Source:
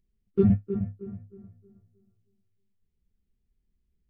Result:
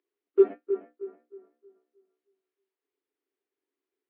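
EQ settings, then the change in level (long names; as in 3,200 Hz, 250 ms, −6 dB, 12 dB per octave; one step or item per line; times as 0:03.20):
Chebyshev high-pass with heavy ripple 280 Hz, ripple 3 dB
high-frequency loss of the air 280 metres
+6.5 dB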